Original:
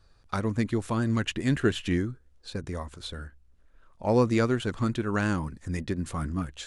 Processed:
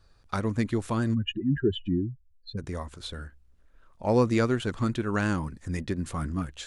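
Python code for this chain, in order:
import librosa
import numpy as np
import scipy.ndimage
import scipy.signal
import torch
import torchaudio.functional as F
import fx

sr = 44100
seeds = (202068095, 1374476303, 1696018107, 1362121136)

y = fx.spec_expand(x, sr, power=2.8, at=(1.13, 2.57), fade=0.02)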